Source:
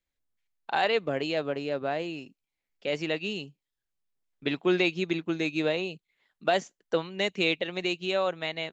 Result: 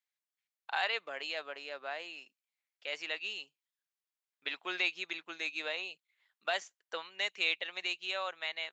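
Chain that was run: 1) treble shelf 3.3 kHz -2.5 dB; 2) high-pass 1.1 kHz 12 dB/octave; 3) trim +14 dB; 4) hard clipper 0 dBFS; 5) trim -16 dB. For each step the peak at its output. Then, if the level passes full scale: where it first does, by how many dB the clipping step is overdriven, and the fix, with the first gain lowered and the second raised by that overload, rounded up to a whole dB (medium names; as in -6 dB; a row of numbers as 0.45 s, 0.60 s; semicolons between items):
-12.5 dBFS, -16.0 dBFS, -2.0 dBFS, -2.0 dBFS, -18.0 dBFS; nothing clips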